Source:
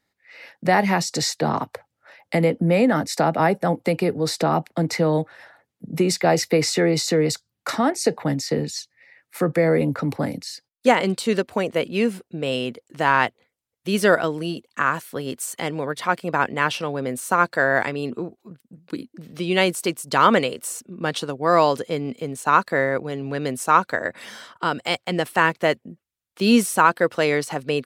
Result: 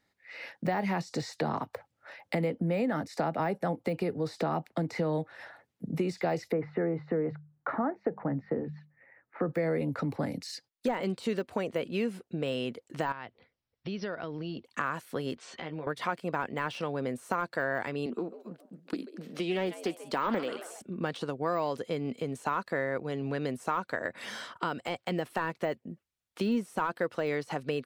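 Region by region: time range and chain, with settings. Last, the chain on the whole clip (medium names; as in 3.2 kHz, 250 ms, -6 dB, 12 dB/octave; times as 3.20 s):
6.52–9.49 s: low-pass 1.6 kHz 24 dB/octave + hum notches 50/100/150/200 Hz
13.12–14.65 s: bass shelf 160 Hz +7.5 dB + compression 3:1, threshold -36 dBFS + brick-wall FIR low-pass 5.9 kHz
15.35–15.87 s: low-pass 4.4 kHz 24 dB/octave + compression 2.5:1, threshold -43 dBFS + doubling 13 ms -4 dB
18.06–20.82 s: high-pass 190 Hz 24 dB/octave + frequency-shifting echo 137 ms, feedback 44%, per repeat +84 Hz, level -19 dB + loudspeaker Doppler distortion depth 0.27 ms
whole clip: de-esser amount 80%; treble shelf 8.1 kHz -7 dB; compression 2.5:1, threshold -32 dBFS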